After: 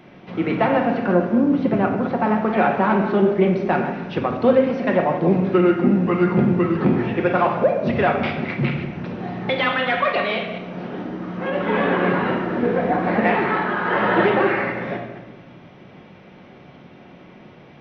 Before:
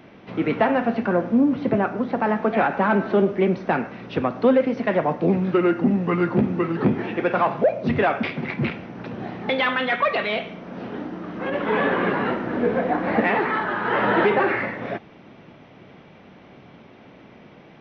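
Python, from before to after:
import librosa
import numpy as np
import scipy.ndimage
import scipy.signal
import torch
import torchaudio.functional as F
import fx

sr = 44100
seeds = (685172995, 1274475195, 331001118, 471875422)

y = fx.reverse_delay(x, sr, ms=115, wet_db=-10)
y = fx.room_shoebox(y, sr, seeds[0], volume_m3=860.0, walls='mixed', distance_m=0.97)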